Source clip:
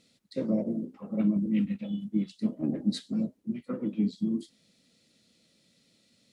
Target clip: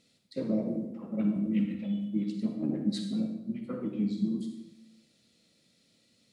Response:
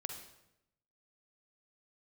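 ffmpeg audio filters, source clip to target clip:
-filter_complex "[1:a]atrim=start_sample=2205,asetrate=41895,aresample=44100[link_01];[0:a][link_01]afir=irnorm=-1:irlink=0"

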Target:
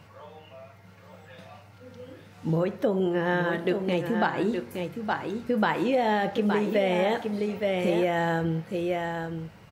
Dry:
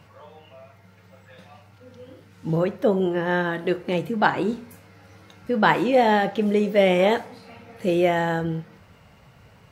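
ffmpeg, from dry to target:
ffmpeg -i in.wav -filter_complex "[0:a]asplit=2[link_01][link_02];[link_02]aecho=0:1:867:0.398[link_03];[link_01][link_03]amix=inputs=2:normalize=0,acompressor=threshold=-21dB:ratio=6" out.wav

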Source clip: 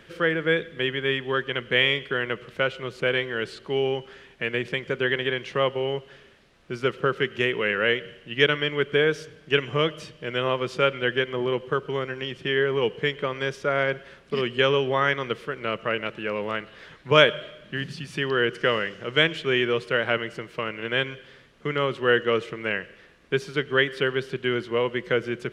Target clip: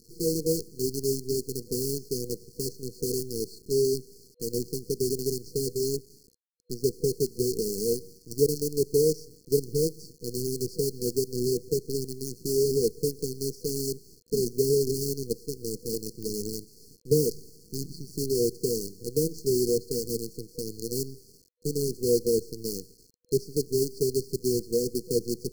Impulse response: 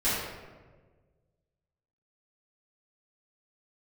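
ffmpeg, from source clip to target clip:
-af "acrusher=bits=5:dc=4:mix=0:aa=0.000001,afftfilt=real='re*(1-between(b*sr/4096,490,4200))':imag='im*(1-between(b*sr/4096,490,4200))':win_size=4096:overlap=0.75"

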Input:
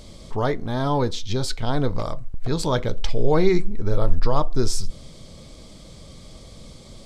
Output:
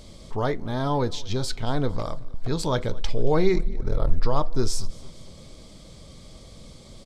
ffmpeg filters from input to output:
ffmpeg -i in.wav -filter_complex "[0:a]asettb=1/sr,asplit=3[link_01][link_02][link_03];[link_01]atrim=end=3.544[link_04];[link_02]atrim=start=3.54:end=4.09,asetpts=PTS-STARTPTS,afade=type=in:duration=0.004:curve=qsin,afade=type=out:start_time=0.546:duration=0.004:curve=qsin,aeval=exprs='val(0)*sin(2*PI*20*n/s)':channel_layout=same[link_05];[link_03]atrim=start=4.086[link_06];[link_04][link_05]acrossfade=duration=0.004:curve1=hsin:curve2=qsin[link_07];[link_07][link_06]acrossfade=duration=0.004:curve1=qsin:curve2=hsin,aecho=1:1:227|454|681|908:0.0668|0.0361|0.0195|0.0105,volume=-2.5dB" out.wav

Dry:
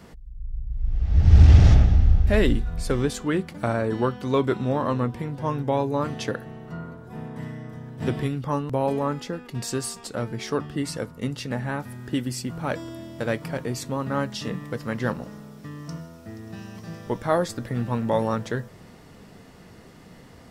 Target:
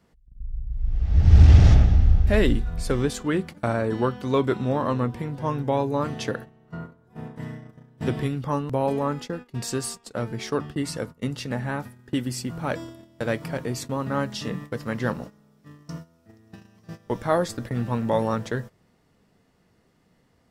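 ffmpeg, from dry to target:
ffmpeg -i in.wav -af "agate=range=-16dB:threshold=-35dB:ratio=16:detection=peak" out.wav

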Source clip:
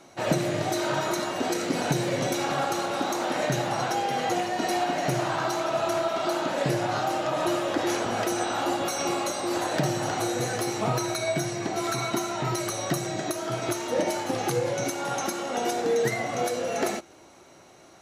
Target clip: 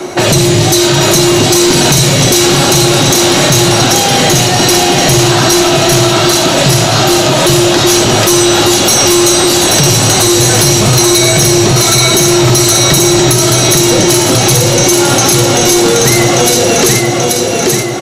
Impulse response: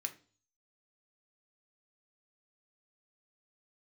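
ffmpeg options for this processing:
-filter_complex "[0:a]equalizer=frequency=370:width=6.1:gain=12,acrossover=split=180|3000[link_01][link_02][link_03];[link_02]acompressor=threshold=-37dB:ratio=10[link_04];[link_01][link_04][link_03]amix=inputs=3:normalize=0,aecho=1:1:833|1666|2499|3332|4165|4998:0.631|0.315|0.158|0.0789|0.0394|0.0197,acrossover=split=2000[link_05][link_06];[link_05]asoftclip=type=hard:threshold=-32.5dB[link_07];[link_07][link_06]amix=inputs=2:normalize=0,apsyclip=30dB,volume=-2.5dB"

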